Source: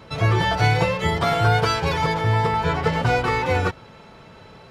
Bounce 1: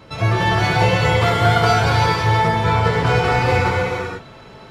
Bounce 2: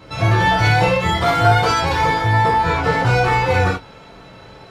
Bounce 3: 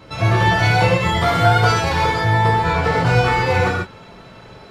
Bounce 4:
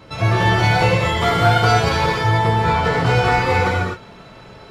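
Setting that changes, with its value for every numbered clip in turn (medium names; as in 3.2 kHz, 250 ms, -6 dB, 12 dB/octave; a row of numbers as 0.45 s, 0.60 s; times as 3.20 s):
gated-style reverb, gate: 510 ms, 100 ms, 170 ms, 280 ms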